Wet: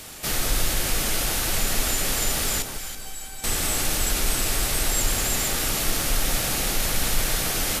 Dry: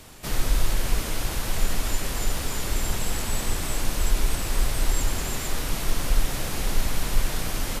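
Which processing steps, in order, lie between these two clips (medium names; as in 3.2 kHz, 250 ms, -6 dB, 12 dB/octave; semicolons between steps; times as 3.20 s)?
tilt EQ +1.5 dB/octave; band-stop 1 kHz, Q 8.6; in parallel at -1 dB: peak limiter -23.5 dBFS, peak gain reduction 10 dB; 2.62–3.44 s: on the sum: feedback comb 780 Hz, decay 0.22 s, mix 90%; echo whose repeats swap between lows and highs 164 ms, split 1.1 kHz, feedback 55%, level -5 dB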